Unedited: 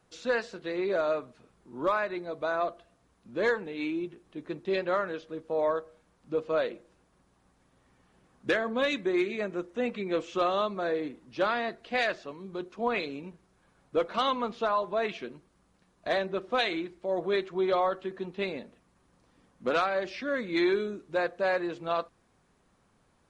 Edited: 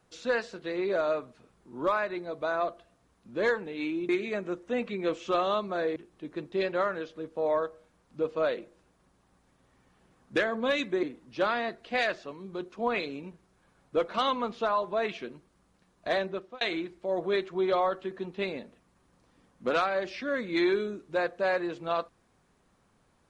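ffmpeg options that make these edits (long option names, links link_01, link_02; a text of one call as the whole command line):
ffmpeg -i in.wav -filter_complex "[0:a]asplit=5[link_01][link_02][link_03][link_04][link_05];[link_01]atrim=end=4.092[link_06];[link_02]atrim=start=9.158:end=11.032[link_07];[link_03]atrim=start=4.088:end=9.162[link_08];[link_04]atrim=start=11.028:end=16.61,asetpts=PTS-STARTPTS,afade=type=out:start_time=5.222:duration=0.36[link_09];[link_05]atrim=start=16.61,asetpts=PTS-STARTPTS,afade=type=in:duration=0.004:curve=hsin[link_10];[link_06][link_07]acrossfade=duration=0.004:curve1=hsin:curve2=hsin[link_11];[link_11][link_08]acrossfade=duration=0.004:curve1=hsin:curve2=hsin[link_12];[link_09][link_10]concat=n=2:v=0:a=1[link_13];[link_12][link_13]acrossfade=duration=0.004:curve1=hsin:curve2=hsin" out.wav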